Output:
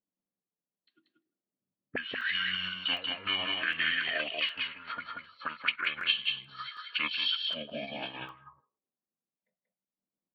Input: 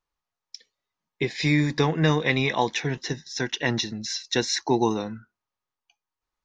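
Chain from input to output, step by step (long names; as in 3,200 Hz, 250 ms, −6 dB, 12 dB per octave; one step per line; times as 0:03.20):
low-shelf EQ 160 Hz −6 dB
envelope filter 300–3,700 Hz, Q 6, up, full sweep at −24.5 dBFS
low-pass filter 5,200 Hz 12 dB per octave
change of speed 0.623×
on a send: single-tap delay 185 ms −4 dB
on the sum: formants moved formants +4 semitones
in parallel at 0 dB: downward compressor, threshold −46 dBFS, peak gain reduction 17.5 dB
on the sum: far-end echo of a speakerphone 160 ms, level −26 dB
regular buffer underruns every 0.76 s, samples 64, zero, from 0:00.69
level +3.5 dB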